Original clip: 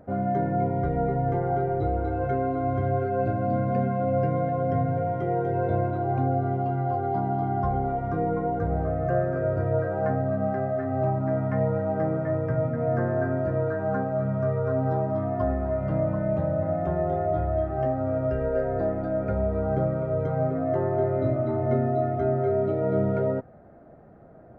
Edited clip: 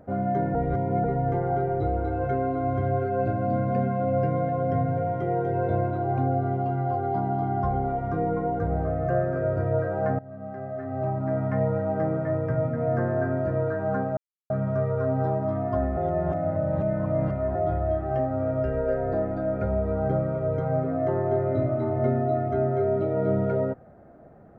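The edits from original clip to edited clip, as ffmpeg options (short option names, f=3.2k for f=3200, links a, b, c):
-filter_complex "[0:a]asplit=7[a][b][c][d][e][f][g];[a]atrim=end=0.552[h];[b]atrim=start=0.548:end=1.042,asetpts=PTS-STARTPTS,areverse[i];[c]atrim=start=1.038:end=10.19,asetpts=PTS-STARTPTS,afade=t=out:st=9.148:d=0.004:c=hsin:silence=0.0944061[j];[d]atrim=start=10.19:end=14.17,asetpts=PTS-STARTPTS,afade=t=in:d=1.26:silence=0.0944061,afade=t=out:st=3.976:d=0.004:c=hsin,apad=pad_dur=0.33[k];[e]atrim=start=14.17:end=15.642,asetpts=PTS-STARTPTS,afade=t=in:d=0.004:c=hsin[l];[f]atrim=start=15.638:end=17.222,asetpts=PTS-STARTPTS,areverse[m];[g]atrim=start=17.218[n];[h][i]acrossfade=d=0.004:c1=hsin:c2=hsin[o];[j][k][l]concat=n=3:v=0:a=1[p];[o][p]acrossfade=d=0.004:c1=hsin:c2=hsin[q];[q][m]acrossfade=d=0.004:c1=hsin:c2=hsin[r];[r][n]acrossfade=d=0.004:c1=hsin:c2=hsin"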